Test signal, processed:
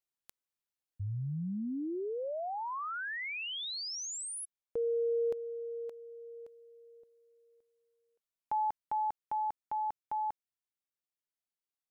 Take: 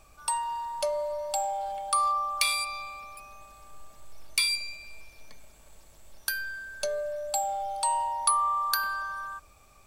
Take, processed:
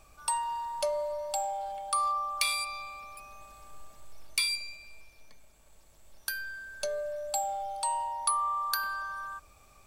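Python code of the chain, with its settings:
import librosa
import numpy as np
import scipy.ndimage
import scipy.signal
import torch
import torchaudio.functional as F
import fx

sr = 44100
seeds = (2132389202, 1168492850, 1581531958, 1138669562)

y = fx.rider(x, sr, range_db=4, speed_s=2.0)
y = F.gain(torch.from_numpy(y), -3.5).numpy()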